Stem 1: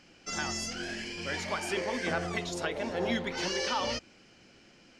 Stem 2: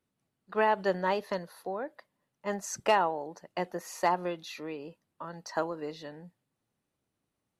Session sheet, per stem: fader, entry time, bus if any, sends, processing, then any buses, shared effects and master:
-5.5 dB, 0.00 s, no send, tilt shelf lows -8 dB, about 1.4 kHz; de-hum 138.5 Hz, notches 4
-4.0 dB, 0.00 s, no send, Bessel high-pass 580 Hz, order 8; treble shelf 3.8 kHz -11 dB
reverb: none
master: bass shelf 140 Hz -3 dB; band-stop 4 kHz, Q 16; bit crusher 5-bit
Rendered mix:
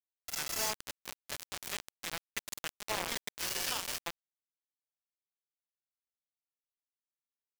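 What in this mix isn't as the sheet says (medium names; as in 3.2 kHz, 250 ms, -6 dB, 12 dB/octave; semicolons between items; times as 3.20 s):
stem 2 -4.0 dB -> -10.0 dB; master: missing bass shelf 140 Hz -3 dB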